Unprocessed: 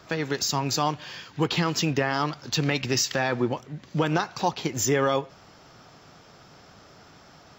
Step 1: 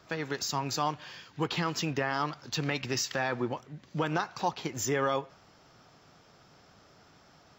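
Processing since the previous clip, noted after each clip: dynamic bell 1.2 kHz, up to +4 dB, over -39 dBFS, Q 0.74; trim -7.5 dB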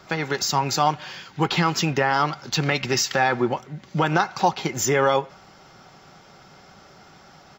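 comb 5.3 ms, depth 31%; small resonant body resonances 810/1400/2100 Hz, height 7 dB; trim +8.5 dB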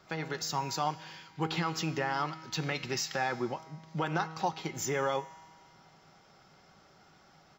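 feedback comb 160 Hz, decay 1.8 s, mix 70%; trim -1.5 dB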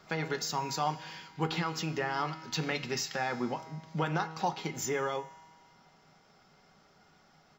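gain riding within 3 dB 0.5 s; on a send at -10 dB: reverberation RT60 0.25 s, pre-delay 4 ms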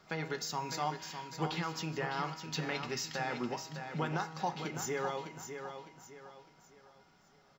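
feedback delay 606 ms, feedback 36%, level -8 dB; trim -4 dB

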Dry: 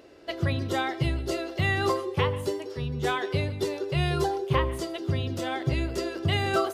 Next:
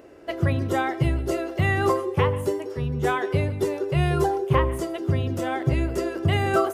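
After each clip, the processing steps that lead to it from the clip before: peaking EQ 4.1 kHz -11.5 dB 1.1 oct; trim +4.5 dB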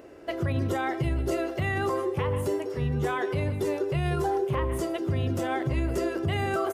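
peak limiter -19 dBFS, peak gain reduction 11.5 dB; delay 1150 ms -18.5 dB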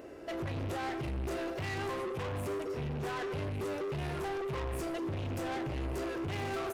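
rattle on loud lows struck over -38 dBFS, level -36 dBFS; saturation -34.5 dBFS, distortion -7 dB; reverberation RT60 1.0 s, pre-delay 18 ms, DRR 14.5 dB

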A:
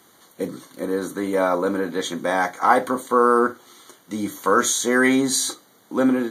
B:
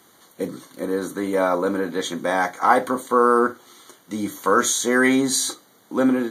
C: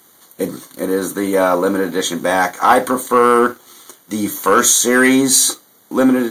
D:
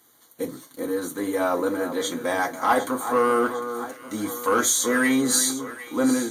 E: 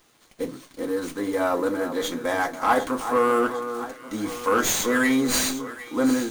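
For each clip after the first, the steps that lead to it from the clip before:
no audible change
treble shelf 8.3 kHz +11 dB; waveshaping leveller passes 1; trim +2.5 dB
comb of notches 190 Hz; on a send: echo whose repeats swap between lows and highs 377 ms, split 1.7 kHz, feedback 71%, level -10 dB; on the sum: trim -8 dB
sliding maximum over 3 samples

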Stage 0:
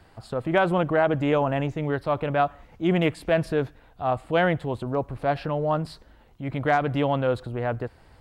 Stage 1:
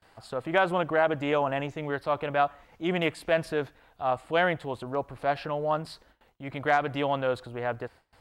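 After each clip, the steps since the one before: bass shelf 350 Hz -11 dB; gate with hold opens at -49 dBFS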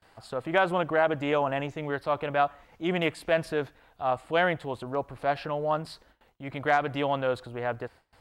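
no audible change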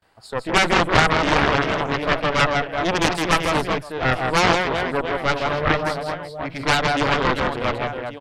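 spectral noise reduction 9 dB; reverse bouncing-ball echo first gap 160 ms, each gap 1.4×, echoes 5; Chebyshev shaper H 4 -8 dB, 7 -9 dB, 8 -16 dB, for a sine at -8.5 dBFS; trim +3.5 dB

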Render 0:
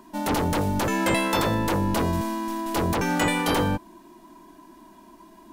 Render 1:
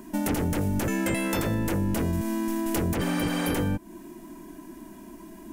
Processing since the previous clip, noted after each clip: spectral replace 3.03–3.48 s, 510–9500 Hz after; graphic EQ 500/1000/4000 Hz -3/-11/-10 dB; compression 4:1, threshold -34 dBFS, peak gain reduction 11 dB; trim +9 dB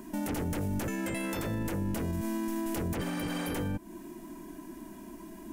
peak limiter -24 dBFS, peak gain reduction 8.5 dB; trim -1.5 dB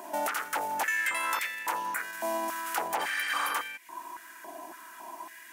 pre-echo 99 ms -18 dB; spectral replace 1.78–2.00 s, 2.5–6.8 kHz both; step-sequenced high-pass 3.6 Hz 710–2100 Hz; trim +5 dB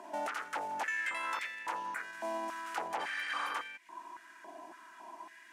distance through air 74 m; trim -5.5 dB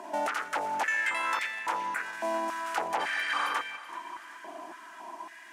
thinning echo 383 ms, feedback 54%, high-pass 450 Hz, level -16 dB; trim +6.5 dB

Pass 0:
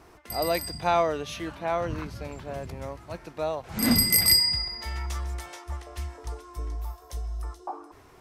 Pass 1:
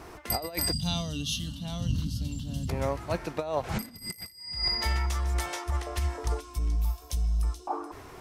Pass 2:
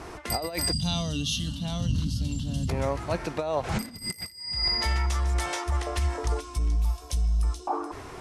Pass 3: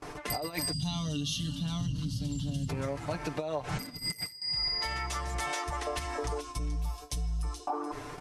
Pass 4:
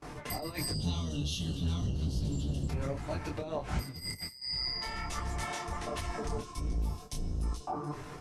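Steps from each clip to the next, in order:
time-frequency box 0.73–2.69 s, 280–2700 Hz -25 dB; compressor with a negative ratio -32 dBFS, ratio -0.5; time-frequency box 6.40–7.70 s, 320–2200 Hz -9 dB; trim +3.5 dB
low-pass 11 kHz 24 dB/octave; in parallel at +2 dB: peak limiter -26.5 dBFS, peak gain reduction 10.5 dB; on the sum: trim -2 dB
comb 6.8 ms, depth 79%; gate with hold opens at -29 dBFS; compression, threshold -27 dBFS, peak gain reduction 9 dB; trim -2.5 dB
octave divider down 1 oct, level +3 dB; detune thickener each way 46 cents

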